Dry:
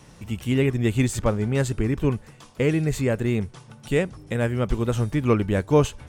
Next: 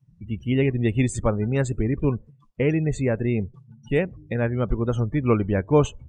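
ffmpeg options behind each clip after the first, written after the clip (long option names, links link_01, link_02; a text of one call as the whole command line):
ffmpeg -i in.wav -af "afftdn=noise_reduction=35:noise_floor=-35" out.wav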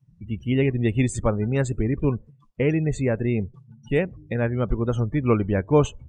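ffmpeg -i in.wav -af anull out.wav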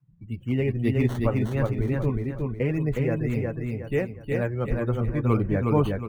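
ffmpeg -i in.wav -filter_complex "[0:a]flanger=delay=5.7:depth=4.2:regen=-40:speed=0.65:shape=triangular,acrossover=split=310|840|3200[link_01][link_02][link_03][link_04];[link_04]acrusher=samples=12:mix=1:aa=0.000001:lfo=1:lforange=12:lforate=2[link_05];[link_01][link_02][link_03][link_05]amix=inputs=4:normalize=0,aecho=1:1:364|728|1092|1456|1820:0.708|0.262|0.0969|0.0359|0.0133" out.wav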